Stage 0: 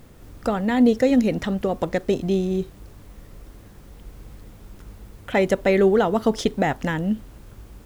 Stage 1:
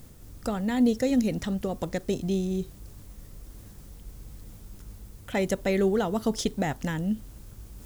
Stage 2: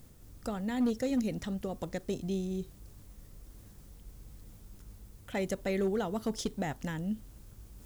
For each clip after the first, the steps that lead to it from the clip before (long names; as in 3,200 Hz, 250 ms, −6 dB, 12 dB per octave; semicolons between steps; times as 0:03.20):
reversed playback; upward compression, threshold −37 dBFS; reversed playback; bass and treble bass +6 dB, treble +11 dB; level −8.5 dB
hard clipping −17 dBFS, distortion −23 dB; level −6.5 dB